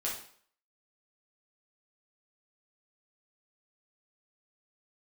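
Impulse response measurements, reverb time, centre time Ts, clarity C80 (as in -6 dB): 0.55 s, 34 ms, 9.5 dB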